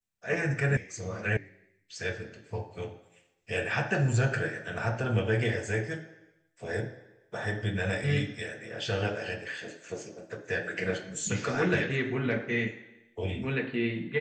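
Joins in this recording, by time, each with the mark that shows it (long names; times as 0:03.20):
0:00.77: cut off before it has died away
0:01.37: cut off before it has died away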